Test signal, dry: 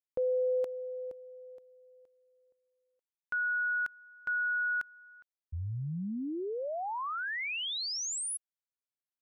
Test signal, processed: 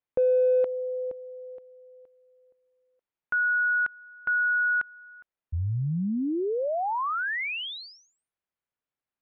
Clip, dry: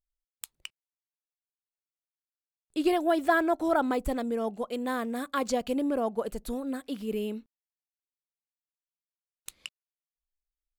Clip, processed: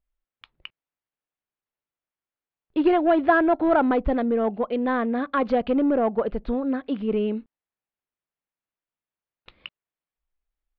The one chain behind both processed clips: in parallel at -10.5 dB: wavefolder -27 dBFS; on the sum: Bessel low-pass 2100 Hz, order 8; gain +6 dB

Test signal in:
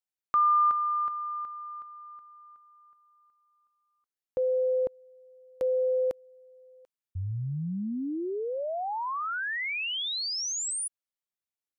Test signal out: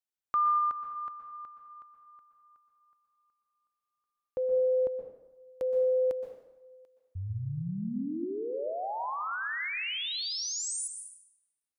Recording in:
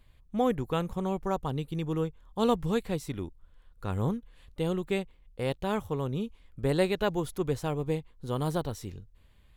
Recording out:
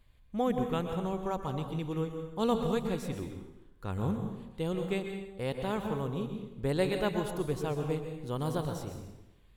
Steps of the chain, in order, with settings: plate-style reverb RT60 0.96 s, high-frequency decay 0.8×, pre-delay 0.11 s, DRR 5 dB; gain -3.5 dB

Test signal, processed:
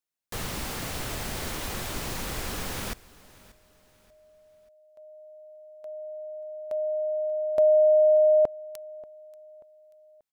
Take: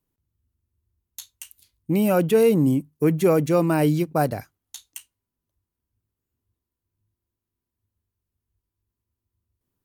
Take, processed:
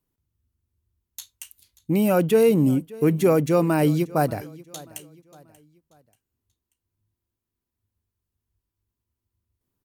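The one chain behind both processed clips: feedback echo 0.585 s, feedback 39%, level -21 dB

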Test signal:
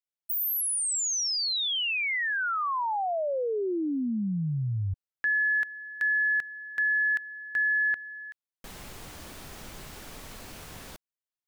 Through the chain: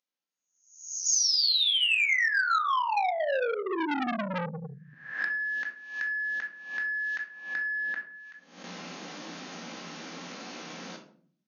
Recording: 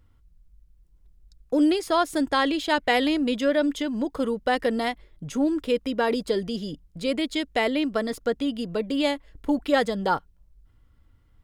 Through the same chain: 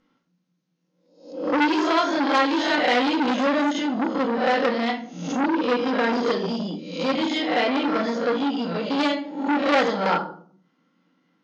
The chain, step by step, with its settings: spectral swells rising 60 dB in 0.58 s; brick-wall FIR band-pass 160–6800 Hz; shoebox room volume 540 m³, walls furnished, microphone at 2.1 m; core saturation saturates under 1900 Hz

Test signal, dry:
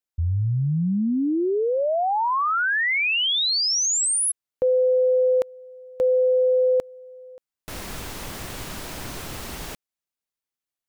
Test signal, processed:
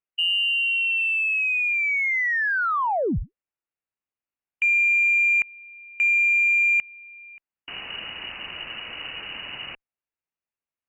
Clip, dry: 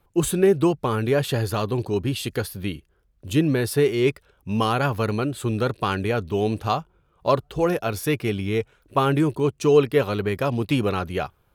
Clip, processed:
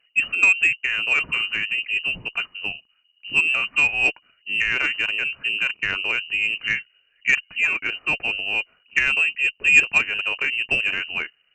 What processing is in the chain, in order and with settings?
inverted band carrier 2900 Hz; added harmonics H 3 -17 dB, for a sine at -5 dBFS; gain +3.5 dB

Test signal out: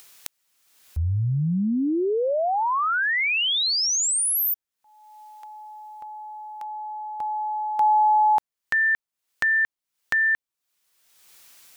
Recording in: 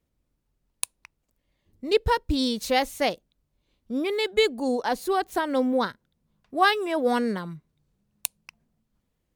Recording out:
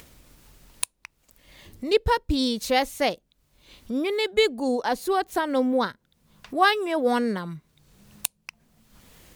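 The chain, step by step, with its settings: in parallel at -1.5 dB: upward compressor, threshold -27 dBFS; on the sum: mismatched tape noise reduction encoder only; gain -4.5 dB

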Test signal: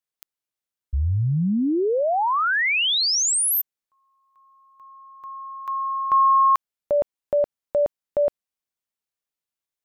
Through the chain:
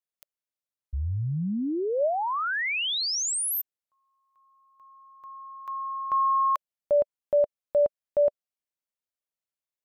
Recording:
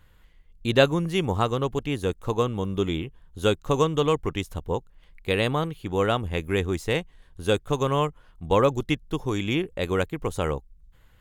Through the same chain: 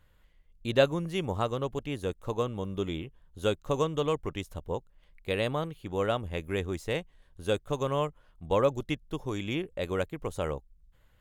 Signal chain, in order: bell 590 Hz +6 dB 0.29 oct; gain -7 dB

